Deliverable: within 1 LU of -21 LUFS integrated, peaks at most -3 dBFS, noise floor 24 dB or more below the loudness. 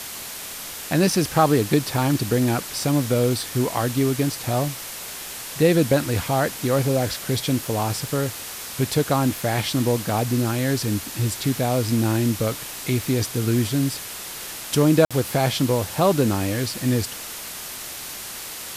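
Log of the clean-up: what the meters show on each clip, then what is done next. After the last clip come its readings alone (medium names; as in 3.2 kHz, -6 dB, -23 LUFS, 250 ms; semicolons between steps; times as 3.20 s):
dropouts 1; longest dropout 56 ms; noise floor -35 dBFS; noise floor target -47 dBFS; loudness -22.5 LUFS; peak level -4.5 dBFS; loudness target -21.0 LUFS
-> interpolate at 15.05 s, 56 ms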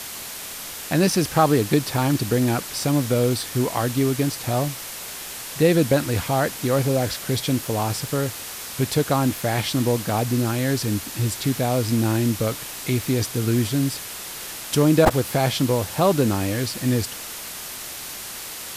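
dropouts 0; noise floor -35 dBFS; noise floor target -47 dBFS
-> noise reduction 12 dB, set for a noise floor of -35 dBFS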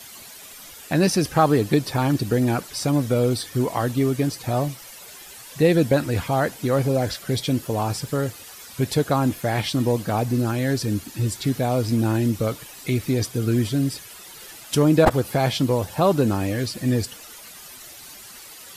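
noise floor -42 dBFS; noise floor target -47 dBFS
-> noise reduction 6 dB, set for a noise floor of -42 dBFS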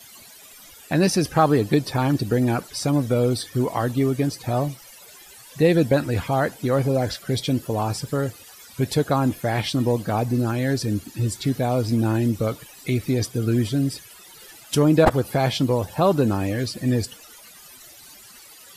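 noise floor -46 dBFS; noise floor target -47 dBFS
-> noise reduction 6 dB, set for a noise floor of -46 dBFS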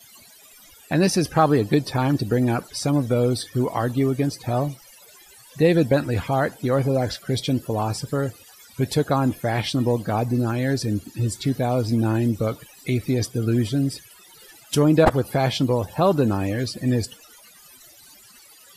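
noise floor -50 dBFS; loudness -22.5 LUFS; peak level -2.5 dBFS; loudness target -21.0 LUFS
-> trim +1.5 dB; peak limiter -3 dBFS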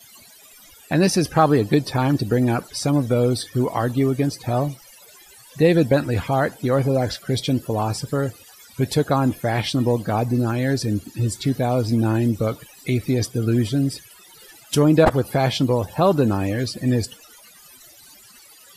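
loudness -21.0 LUFS; peak level -3.0 dBFS; noise floor -48 dBFS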